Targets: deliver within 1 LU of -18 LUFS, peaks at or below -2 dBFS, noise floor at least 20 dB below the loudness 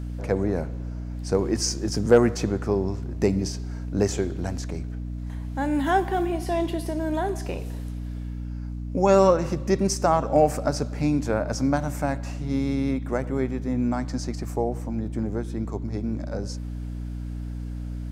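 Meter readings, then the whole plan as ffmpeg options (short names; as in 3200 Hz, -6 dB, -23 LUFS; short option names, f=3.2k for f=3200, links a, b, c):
hum 60 Hz; harmonics up to 300 Hz; hum level -30 dBFS; loudness -26.0 LUFS; peak -5.5 dBFS; loudness target -18.0 LUFS
-> -af "bandreject=f=60:t=h:w=4,bandreject=f=120:t=h:w=4,bandreject=f=180:t=h:w=4,bandreject=f=240:t=h:w=4,bandreject=f=300:t=h:w=4"
-af "volume=8dB,alimiter=limit=-2dB:level=0:latency=1"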